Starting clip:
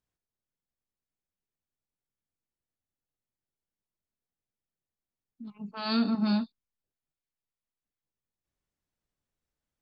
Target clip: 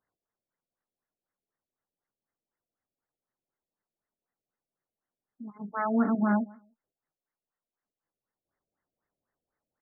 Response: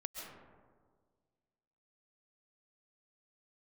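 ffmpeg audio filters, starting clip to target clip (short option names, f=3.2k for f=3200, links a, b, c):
-af "aemphasis=mode=production:type=riaa,aecho=1:1:149|298:0.0668|0.0127,afftfilt=real='re*lt(b*sr/1024,680*pow(2200/680,0.5+0.5*sin(2*PI*4*pts/sr)))':imag='im*lt(b*sr/1024,680*pow(2200/680,0.5+0.5*sin(2*PI*4*pts/sr)))':win_size=1024:overlap=0.75,volume=8.5dB"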